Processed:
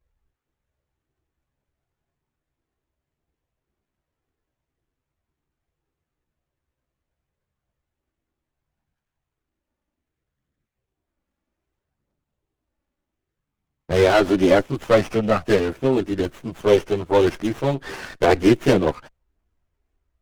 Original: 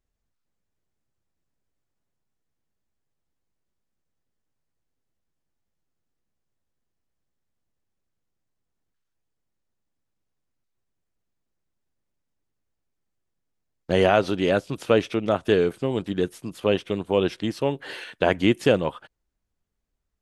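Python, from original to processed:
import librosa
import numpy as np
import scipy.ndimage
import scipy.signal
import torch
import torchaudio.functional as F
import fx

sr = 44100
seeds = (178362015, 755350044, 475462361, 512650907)

y = fx.chorus_voices(x, sr, voices=4, hz=0.32, base_ms=14, depth_ms=1.8, mix_pct=65)
y = fx.running_max(y, sr, window=9)
y = y * 10.0 ** (8.0 / 20.0)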